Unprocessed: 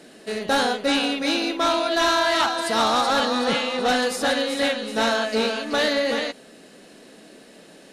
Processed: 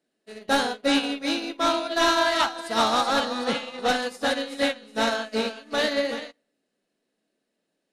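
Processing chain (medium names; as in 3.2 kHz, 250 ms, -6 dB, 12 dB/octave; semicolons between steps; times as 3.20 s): on a send at -14 dB: reverberation RT60 0.85 s, pre-delay 3 ms; on the sum: upward expansion 2.5:1, over -39 dBFS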